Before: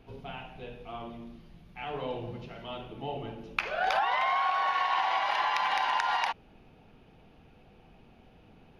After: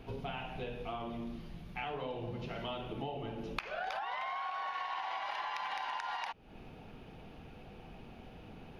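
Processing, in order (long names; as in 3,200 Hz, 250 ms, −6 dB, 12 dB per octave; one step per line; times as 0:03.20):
downward compressor 8 to 1, threshold −42 dBFS, peak gain reduction 18.5 dB
level +5.5 dB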